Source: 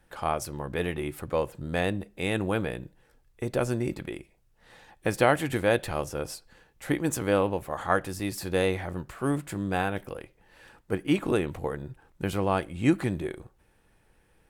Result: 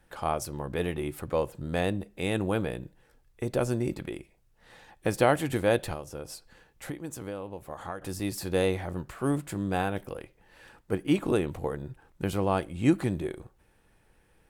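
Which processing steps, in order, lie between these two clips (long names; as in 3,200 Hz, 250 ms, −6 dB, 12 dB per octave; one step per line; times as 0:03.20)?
dynamic equaliser 1,900 Hz, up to −4 dB, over −45 dBFS, Q 1
0:05.93–0:08.02: downward compressor 5 to 1, threshold −35 dBFS, peak gain reduction 14.5 dB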